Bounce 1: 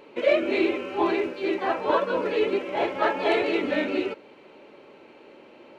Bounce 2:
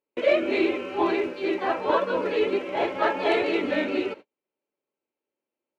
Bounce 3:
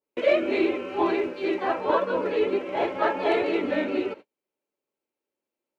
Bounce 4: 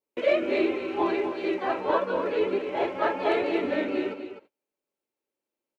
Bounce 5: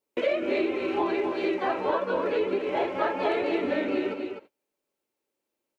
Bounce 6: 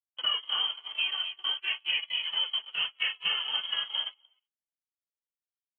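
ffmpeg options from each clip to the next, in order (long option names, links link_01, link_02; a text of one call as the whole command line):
ffmpeg -i in.wav -af "agate=range=-40dB:threshold=-39dB:ratio=16:detection=peak" out.wav
ffmpeg -i in.wav -af "adynamicequalizer=threshold=0.0126:dfrequency=1800:dqfactor=0.7:tfrequency=1800:tqfactor=0.7:attack=5:release=100:ratio=0.375:range=2.5:mode=cutabove:tftype=highshelf" out.wav
ffmpeg -i in.wav -af "aecho=1:1:253:0.335,volume=-2dB" out.wav
ffmpeg -i in.wav -af "acompressor=threshold=-28dB:ratio=4,volume=4.5dB" out.wav
ffmpeg -i in.wav -af "lowpass=frequency=3000:width_type=q:width=0.5098,lowpass=frequency=3000:width_type=q:width=0.6013,lowpass=frequency=3000:width_type=q:width=0.9,lowpass=frequency=3000:width_type=q:width=2.563,afreqshift=-3500,agate=range=-31dB:threshold=-26dB:ratio=16:detection=peak,volume=-3dB" out.wav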